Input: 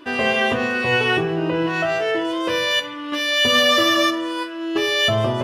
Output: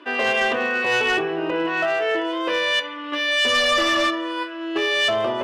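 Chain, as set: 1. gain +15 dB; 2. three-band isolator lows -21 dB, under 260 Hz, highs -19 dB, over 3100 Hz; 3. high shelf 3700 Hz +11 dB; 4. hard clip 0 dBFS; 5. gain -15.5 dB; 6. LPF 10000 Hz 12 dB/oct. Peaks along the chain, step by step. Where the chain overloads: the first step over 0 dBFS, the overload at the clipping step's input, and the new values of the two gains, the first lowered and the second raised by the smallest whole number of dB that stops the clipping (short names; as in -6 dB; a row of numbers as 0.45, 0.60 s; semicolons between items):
+10.0, +7.5, +9.5, 0.0, -15.5, -14.5 dBFS; step 1, 9.5 dB; step 1 +5 dB, step 5 -5.5 dB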